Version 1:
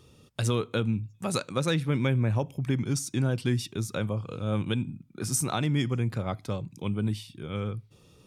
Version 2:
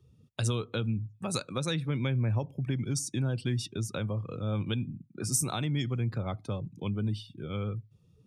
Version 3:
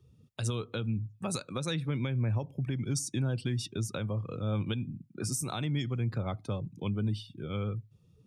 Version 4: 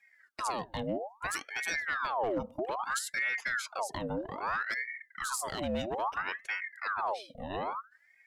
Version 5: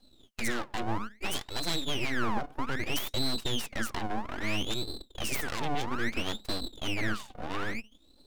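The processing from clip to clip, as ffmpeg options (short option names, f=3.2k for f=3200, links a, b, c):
-filter_complex "[0:a]afftdn=nr=18:nf=-46,acrossover=split=120|3000[a][b][c];[b]acompressor=threshold=-35dB:ratio=2[d];[a][d][c]amix=inputs=3:normalize=0"
-af "alimiter=limit=-22dB:level=0:latency=1:release=201"
-af "highpass=f=93:w=0.5412,highpass=f=93:w=1.3066,aeval=exprs='clip(val(0),-1,0.0473)':c=same,aeval=exprs='val(0)*sin(2*PI*1200*n/s+1200*0.7/0.61*sin(2*PI*0.61*n/s))':c=same,volume=1.5dB"
-af "aeval=exprs='abs(val(0))':c=same,volume=4.5dB"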